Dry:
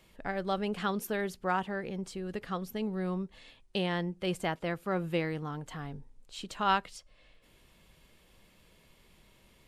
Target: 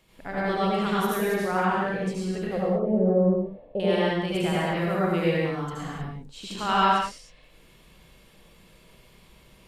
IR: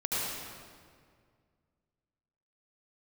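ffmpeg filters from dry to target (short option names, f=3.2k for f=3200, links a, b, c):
-filter_complex "[0:a]asettb=1/sr,asplit=3[a][b][c];[a]atrim=end=2.474[d];[b]atrim=start=2.47:end=3.8,asetpts=PTS-STARTPTS,afade=t=in:d=0.004:c=qsin,afade=t=out:st=1.326:d=0.004:c=qsin,lowpass=f=580:t=q:w=4.8[e];[c]atrim=start=3.796[f];[d][e]acrossfade=d=0.004:c1=hsin:c2=qsin[g];[g][f]acrossfade=d=0.004:c1=qsin:c2=hsin[h];[1:a]atrim=start_sample=2205,afade=t=out:st=0.37:d=0.01,atrim=end_sample=16758[i];[h][i]afir=irnorm=-1:irlink=0"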